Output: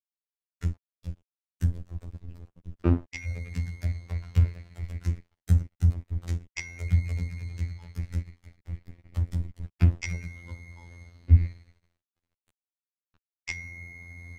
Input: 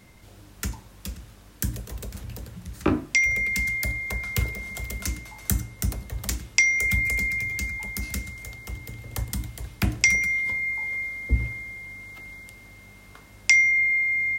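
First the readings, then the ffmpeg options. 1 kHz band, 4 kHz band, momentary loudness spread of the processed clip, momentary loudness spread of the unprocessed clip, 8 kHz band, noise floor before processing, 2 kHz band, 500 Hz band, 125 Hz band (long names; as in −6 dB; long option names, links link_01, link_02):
−9.5 dB, −15.0 dB, 19 LU, 19 LU, −19.0 dB, −50 dBFS, −21.5 dB, −5.0 dB, +6.0 dB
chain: -af "aeval=exprs='sgn(val(0))*max(abs(val(0))-0.0188,0)':channel_layout=same,aemphasis=mode=reproduction:type=riaa,afftfilt=real='hypot(re,im)*cos(PI*b)':imag='0':win_size=2048:overlap=0.75,volume=-3.5dB"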